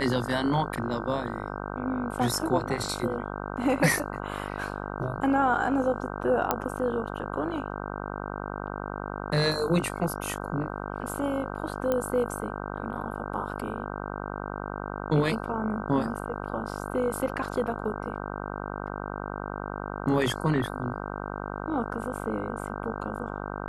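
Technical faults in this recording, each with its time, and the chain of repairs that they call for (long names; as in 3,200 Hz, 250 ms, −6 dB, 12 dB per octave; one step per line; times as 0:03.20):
mains buzz 50 Hz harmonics 31 −35 dBFS
0:06.51: click −9 dBFS
0:11.92: click −14 dBFS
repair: click removal
hum removal 50 Hz, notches 31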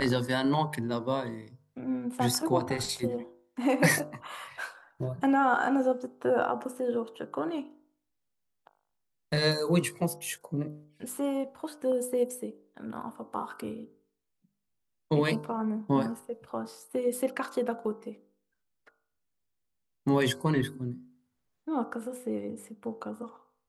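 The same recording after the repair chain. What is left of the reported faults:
none of them is left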